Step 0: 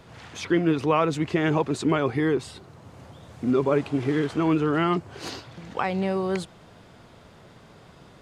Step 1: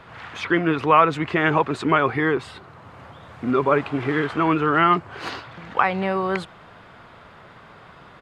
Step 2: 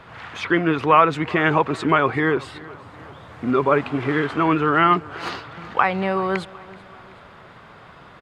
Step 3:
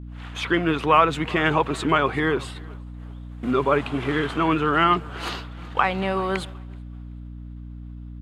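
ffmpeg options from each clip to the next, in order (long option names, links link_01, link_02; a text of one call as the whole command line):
ffmpeg -i in.wav -af "firequalizer=gain_entry='entry(300,0);entry(1200,11);entry(5900,-6)':delay=0.05:min_phase=1" out.wav
ffmpeg -i in.wav -af "aecho=1:1:379|758|1137:0.0891|0.0428|0.0205,volume=1dB" out.wav
ffmpeg -i in.wav -af "aexciter=amount=1.2:drive=8.3:freq=2800,agate=range=-33dB:threshold=-31dB:ratio=3:detection=peak,aeval=exprs='val(0)+0.0224*(sin(2*PI*60*n/s)+sin(2*PI*2*60*n/s)/2+sin(2*PI*3*60*n/s)/3+sin(2*PI*4*60*n/s)/4+sin(2*PI*5*60*n/s)/5)':channel_layout=same,volume=-2.5dB" out.wav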